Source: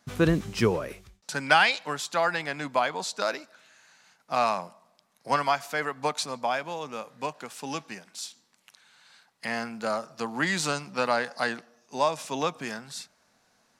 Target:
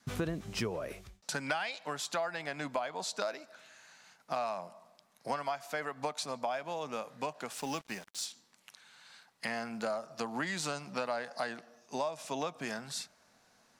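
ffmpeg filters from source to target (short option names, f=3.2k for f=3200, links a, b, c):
-filter_complex "[0:a]adynamicequalizer=threshold=0.00891:dfrequency=650:dqfactor=3.8:tfrequency=650:tqfactor=3.8:attack=5:release=100:ratio=0.375:range=3.5:mode=boostabove:tftype=bell,acompressor=threshold=-33dB:ratio=5,asettb=1/sr,asplit=3[a][b][c];[a]atrim=end=7.574[d];[b]atrim=start=7.57:end=8.25,asetpts=PTS-STARTPTS,afade=t=in:d=0.004:c=qsin,afade=t=out:st=0.676:d=0.004:c=qsin,acrusher=bits=7:mix=0:aa=0.5[e];[c]atrim=start=8.246[f];[d][e]acrossfade=d=0.004:c1=hsin:c2=qsin[g];[g][f]acrossfade=d=0.004:c1=qsin:c2=hsin"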